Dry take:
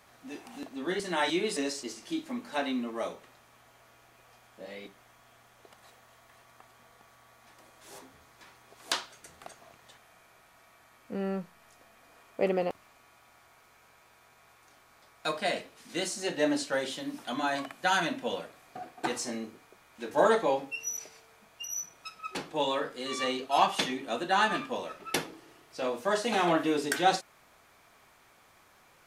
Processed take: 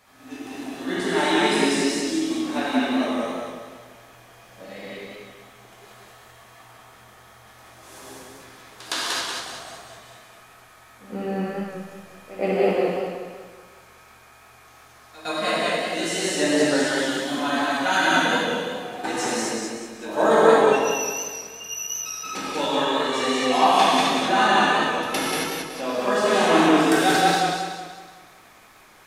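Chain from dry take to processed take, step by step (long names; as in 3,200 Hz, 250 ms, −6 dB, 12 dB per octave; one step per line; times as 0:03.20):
backwards echo 113 ms −16.5 dB
reverb whose tail is shaped and stops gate 300 ms flat, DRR −7 dB
feedback echo with a swinging delay time 187 ms, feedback 44%, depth 68 cents, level −3 dB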